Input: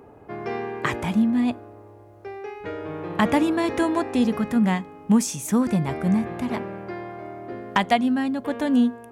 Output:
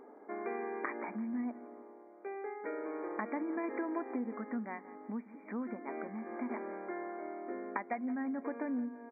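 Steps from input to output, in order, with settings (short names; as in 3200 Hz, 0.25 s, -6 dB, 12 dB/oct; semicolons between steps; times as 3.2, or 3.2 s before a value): compressor 6:1, threshold -28 dBFS, peak gain reduction 14 dB; brick-wall FIR band-pass 210–2400 Hz; on a send: feedback echo 0.169 s, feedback 42%, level -17 dB; on the sum: gain -6 dB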